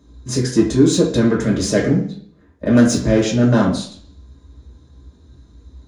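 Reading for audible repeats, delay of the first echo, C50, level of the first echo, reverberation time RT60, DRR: no echo audible, no echo audible, 6.0 dB, no echo audible, 0.55 s, −4.0 dB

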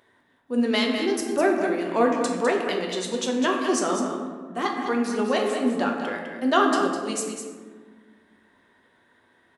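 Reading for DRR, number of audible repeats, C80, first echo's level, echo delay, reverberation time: −0.5 dB, 1, 3.5 dB, −8.0 dB, 204 ms, 1.6 s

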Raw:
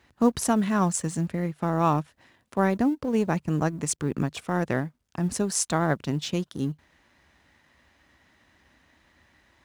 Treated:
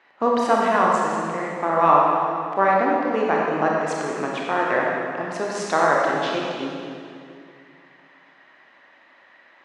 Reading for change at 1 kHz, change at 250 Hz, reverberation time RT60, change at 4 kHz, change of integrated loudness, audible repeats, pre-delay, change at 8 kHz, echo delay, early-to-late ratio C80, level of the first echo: +11.0 dB, −2.0 dB, 2.4 s, +3.0 dB, +5.5 dB, no echo audible, 26 ms, −8.5 dB, no echo audible, 0.0 dB, no echo audible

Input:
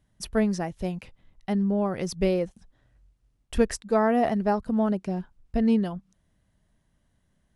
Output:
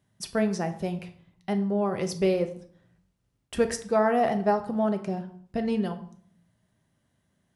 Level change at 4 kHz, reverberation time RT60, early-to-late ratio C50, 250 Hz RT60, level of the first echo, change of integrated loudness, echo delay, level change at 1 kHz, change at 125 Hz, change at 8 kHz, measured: +0.5 dB, 0.55 s, 12.5 dB, 0.80 s, no echo audible, −1.0 dB, no echo audible, +1.0 dB, −1.5 dB, +0.5 dB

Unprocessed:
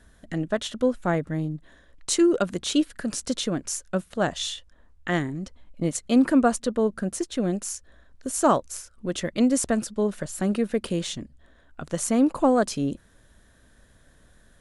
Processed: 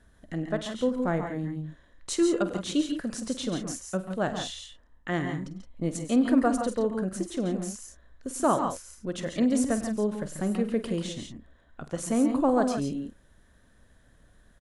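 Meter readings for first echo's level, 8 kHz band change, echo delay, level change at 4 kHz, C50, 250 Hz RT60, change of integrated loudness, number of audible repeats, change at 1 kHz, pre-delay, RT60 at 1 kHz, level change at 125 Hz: −13.5 dB, −6.5 dB, 48 ms, −5.5 dB, no reverb audible, no reverb audible, −3.5 dB, 3, −3.0 dB, no reverb audible, no reverb audible, −3.0 dB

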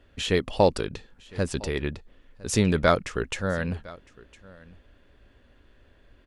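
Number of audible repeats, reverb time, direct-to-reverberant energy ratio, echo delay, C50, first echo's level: 1, no reverb audible, no reverb audible, 1,008 ms, no reverb audible, −22.0 dB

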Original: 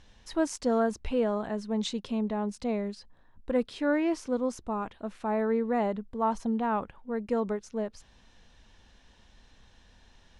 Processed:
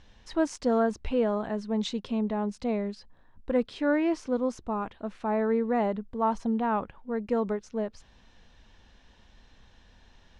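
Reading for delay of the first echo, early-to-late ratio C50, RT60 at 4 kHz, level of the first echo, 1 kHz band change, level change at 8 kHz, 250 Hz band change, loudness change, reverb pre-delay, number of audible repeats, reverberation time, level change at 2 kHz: no echo audible, no reverb audible, no reverb audible, no echo audible, +1.0 dB, can't be measured, +1.5 dB, +1.5 dB, no reverb audible, no echo audible, no reverb audible, +1.0 dB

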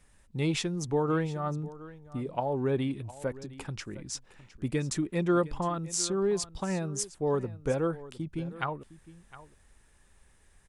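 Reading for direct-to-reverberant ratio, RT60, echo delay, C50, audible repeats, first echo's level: no reverb audible, no reverb audible, 710 ms, no reverb audible, 1, −17.5 dB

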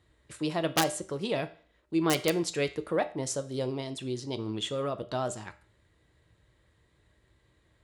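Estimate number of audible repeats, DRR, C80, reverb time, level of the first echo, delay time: no echo audible, 9.0 dB, 20.5 dB, 0.45 s, no echo audible, no echo audible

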